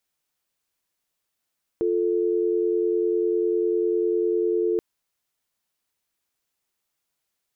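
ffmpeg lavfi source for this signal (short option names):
-f lavfi -i "aevalsrc='0.075*(sin(2*PI*350*t)+sin(2*PI*440*t))':d=2.98:s=44100"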